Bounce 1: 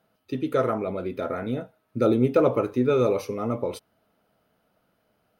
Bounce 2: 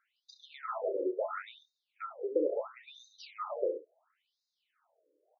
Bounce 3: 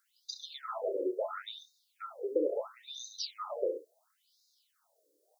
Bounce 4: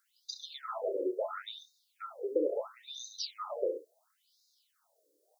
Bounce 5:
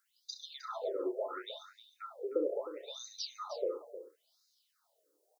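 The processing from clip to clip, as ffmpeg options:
-af "aecho=1:1:30|66:0.335|0.316,acompressor=threshold=-26dB:ratio=5,afftfilt=real='re*between(b*sr/1024,400*pow(5200/400,0.5+0.5*sin(2*PI*0.73*pts/sr))/1.41,400*pow(5200/400,0.5+0.5*sin(2*PI*0.73*pts/sr))*1.41)':imag='im*between(b*sr/1024,400*pow(5200/400,0.5+0.5*sin(2*PI*0.73*pts/sr))/1.41,400*pow(5200/400,0.5+0.5*sin(2*PI*0.73*pts/sr))*1.41)':win_size=1024:overlap=0.75"
-af "highshelf=f=2.6k:g=-9.5,aexciter=amount=15.8:drive=5:freq=3.7k"
-af anull
-af "aecho=1:1:310:0.237,volume=-2.5dB"

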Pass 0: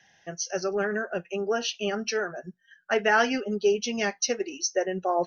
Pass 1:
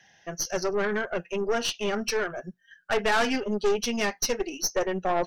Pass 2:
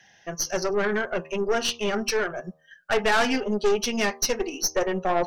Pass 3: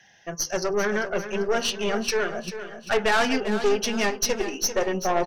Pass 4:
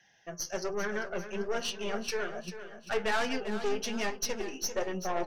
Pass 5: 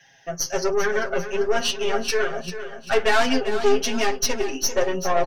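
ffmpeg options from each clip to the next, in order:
-af "aeval=exprs='(tanh(15.8*val(0)+0.55)-tanh(0.55))/15.8':c=same,volume=4.5dB"
-af "bandreject=f=78.43:t=h:w=4,bandreject=f=156.86:t=h:w=4,bandreject=f=235.29:t=h:w=4,bandreject=f=313.72:t=h:w=4,bandreject=f=392.15:t=h:w=4,bandreject=f=470.58:t=h:w=4,bandreject=f=549.01:t=h:w=4,bandreject=f=627.44:t=h:w=4,bandreject=f=705.87:t=h:w=4,bandreject=f=784.3:t=h:w=4,bandreject=f=862.73:t=h:w=4,bandreject=f=941.16:t=h:w=4,bandreject=f=1.01959k:t=h:w=4,bandreject=f=1.09802k:t=h:w=4,bandreject=f=1.17645k:t=h:w=4,bandreject=f=1.25488k:t=h:w=4,volume=2.5dB"
-af "aecho=1:1:394|788|1182|1576|1970:0.282|0.127|0.0571|0.0257|0.0116"
-af "flanger=delay=5.6:depth=5.9:regen=67:speed=1.2:shape=sinusoidal,volume=-4.5dB"
-af "aecho=1:1:7.4:0.85,volume=8dB"

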